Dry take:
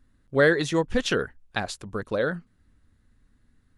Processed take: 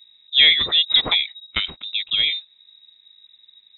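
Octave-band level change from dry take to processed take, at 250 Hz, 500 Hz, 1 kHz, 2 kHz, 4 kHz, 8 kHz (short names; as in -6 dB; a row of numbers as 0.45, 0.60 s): -13.5 dB, -16.0 dB, -3.5 dB, +3.5 dB, +21.5 dB, under -40 dB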